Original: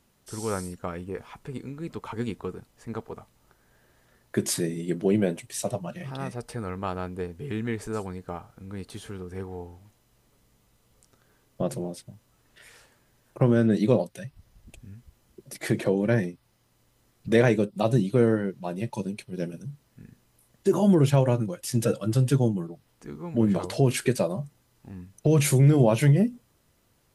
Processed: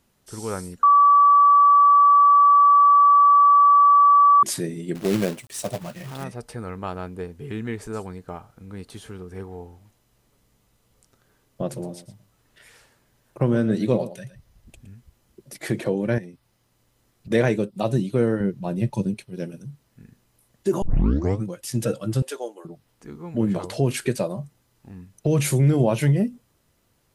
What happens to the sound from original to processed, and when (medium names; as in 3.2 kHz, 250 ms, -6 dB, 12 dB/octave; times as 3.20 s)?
0.83–4.43 s: bleep 1.15 kHz -10.5 dBFS
4.95–6.24 s: companded quantiser 4-bit
11.66–14.91 s: delay 115 ms -13.5 dB
16.18–17.31 s: compression 4:1, threshold -36 dBFS
18.40–19.14 s: bass shelf 280 Hz +11 dB
20.82 s: tape start 0.62 s
22.22–22.65 s: inverse Chebyshev high-pass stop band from 170 Hz, stop band 50 dB